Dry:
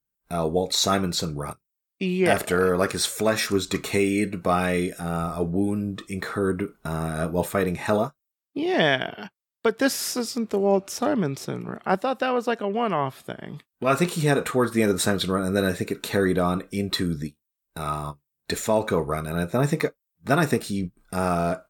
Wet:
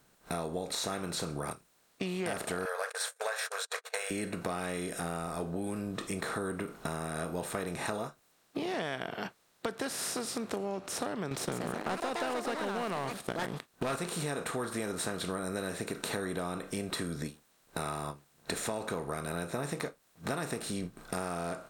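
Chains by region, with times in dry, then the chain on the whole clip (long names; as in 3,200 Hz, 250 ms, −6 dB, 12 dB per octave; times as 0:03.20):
0:02.65–0:04.11: noise gate −29 dBFS, range −59 dB + linear-phase brick-wall high-pass 440 Hz + parametric band 1,600 Hz +12 dB 0.3 octaves
0:11.31–0:13.96: leveller curve on the samples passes 2 + delay with pitch and tempo change per echo 166 ms, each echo +5 semitones, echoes 2, each echo −6 dB
whole clip: compressor on every frequency bin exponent 0.6; dynamic equaliser 9,200 Hz, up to +8 dB, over −48 dBFS, Q 3.5; downward compressor, threshold −24 dBFS; level −8 dB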